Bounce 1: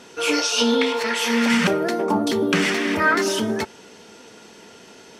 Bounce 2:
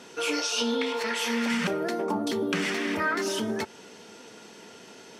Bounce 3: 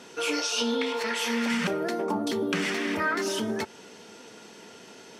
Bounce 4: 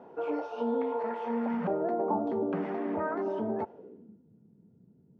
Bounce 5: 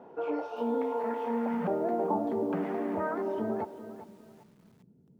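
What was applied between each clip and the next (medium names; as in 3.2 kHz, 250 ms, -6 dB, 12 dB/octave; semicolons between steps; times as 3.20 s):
high-pass 93 Hz; compression 2:1, threshold -26 dBFS, peak gain reduction 7 dB; trim -2.5 dB
no audible change
low-pass sweep 780 Hz -> 150 Hz, 3.67–4.22 s; trim -4 dB
bit-crushed delay 394 ms, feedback 35%, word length 9-bit, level -13 dB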